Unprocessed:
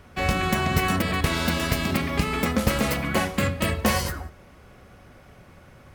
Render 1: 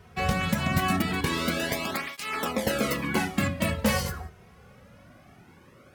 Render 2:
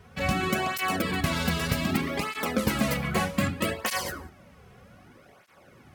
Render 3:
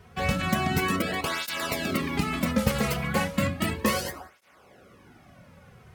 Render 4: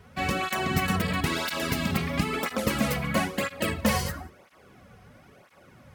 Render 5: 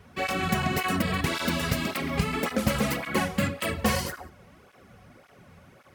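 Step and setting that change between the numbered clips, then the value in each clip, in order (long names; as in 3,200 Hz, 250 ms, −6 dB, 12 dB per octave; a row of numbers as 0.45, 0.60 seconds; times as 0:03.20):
through-zero flanger with one copy inverted, nulls at: 0.23, 0.64, 0.34, 1, 1.8 Hertz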